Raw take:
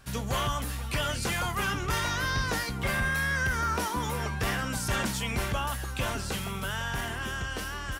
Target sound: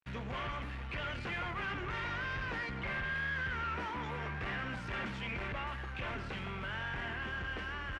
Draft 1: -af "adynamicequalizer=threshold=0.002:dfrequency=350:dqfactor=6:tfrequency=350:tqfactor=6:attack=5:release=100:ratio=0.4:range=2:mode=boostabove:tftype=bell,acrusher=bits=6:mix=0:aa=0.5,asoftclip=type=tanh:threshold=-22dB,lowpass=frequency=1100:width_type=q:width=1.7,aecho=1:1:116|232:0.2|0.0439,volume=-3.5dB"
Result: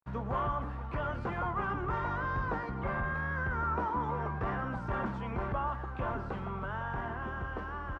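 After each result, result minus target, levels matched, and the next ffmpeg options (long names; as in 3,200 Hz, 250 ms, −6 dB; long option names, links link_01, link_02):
soft clipping: distortion −12 dB; 2,000 Hz band −5.0 dB
-af "adynamicequalizer=threshold=0.002:dfrequency=350:dqfactor=6:tfrequency=350:tqfactor=6:attack=5:release=100:ratio=0.4:range=2:mode=boostabove:tftype=bell,acrusher=bits=6:mix=0:aa=0.5,asoftclip=type=tanh:threshold=-33.5dB,lowpass=frequency=1100:width_type=q:width=1.7,aecho=1:1:116|232:0.2|0.0439,volume=-3.5dB"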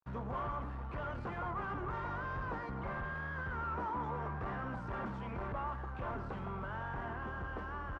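2,000 Hz band −5.0 dB
-af "adynamicequalizer=threshold=0.002:dfrequency=350:dqfactor=6:tfrequency=350:tqfactor=6:attack=5:release=100:ratio=0.4:range=2:mode=boostabove:tftype=bell,acrusher=bits=6:mix=0:aa=0.5,asoftclip=type=tanh:threshold=-33.5dB,lowpass=frequency=2300:width_type=q:width=1.7,aecho=1:1:116|232:0.2|0.0439,volume=-3.5dB"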